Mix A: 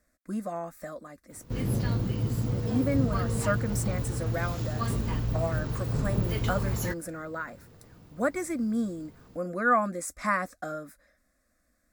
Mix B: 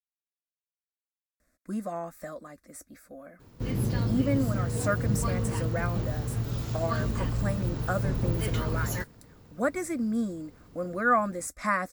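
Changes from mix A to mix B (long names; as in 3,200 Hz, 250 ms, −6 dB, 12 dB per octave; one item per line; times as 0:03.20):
speech: entry +1.40 s
background: entry +2.10 s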